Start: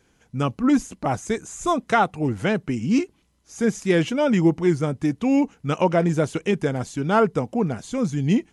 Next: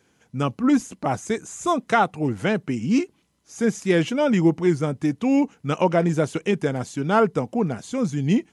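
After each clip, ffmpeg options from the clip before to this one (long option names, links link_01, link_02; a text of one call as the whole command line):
ffmpeg -i in.wav -af "highpass=100" out.wav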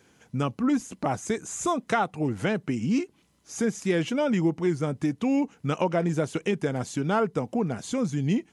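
ffmpeg -i in.wav -af "acompressor=threshold=-31dB:ratio=2,volume=3dB" out.wav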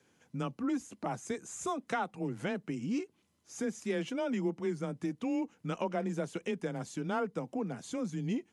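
ffmpeg -i in.wav -af "afreqshift=19,volume=-9dB" out.wav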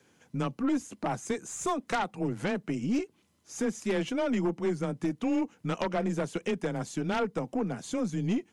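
ffmpeg -i in.wav -af "aeval=exprs='0.0944*(cos(1*acos(clip(val(0)/0.0944,-1,1)))-cos(1*PI/2))+0.0211*(cos(2*acos(clip(val(0)/0.0944,-1,1)))-cos(2*PI/2))+0.0168*(cos(4*acos(clip(val(0)/0.0944,-1,1)))-cos(4*PI/2))+0.0376*(cos(5*acos(clip(val(0)/0.0944,-1,1)))-cos(5*PI/2))+0.0168*(cos(7*acos(clip(val(0)/0.0944,-1,1)))-cos(7*PI/2))':channel_layout=same" out.wav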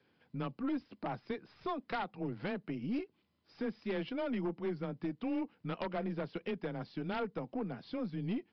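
ffmpeg -i in.wav -af "aresample=11025,aresample=44100,volume=-7.5dB" out.wav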